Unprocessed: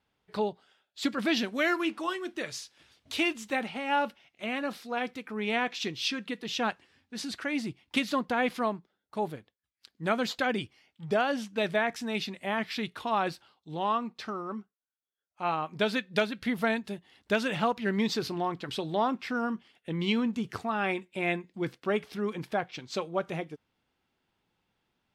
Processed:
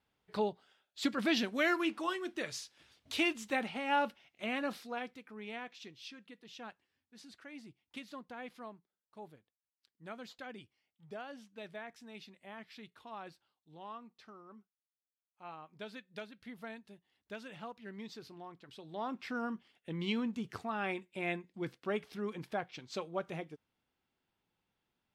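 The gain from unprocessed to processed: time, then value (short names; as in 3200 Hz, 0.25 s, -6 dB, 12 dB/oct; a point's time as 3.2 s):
4.79 s -3.5 dB
5.09 s -11 dB
5.97 s -18.5 dB
18.78 s -18.5 dB
19.21 s -7 dB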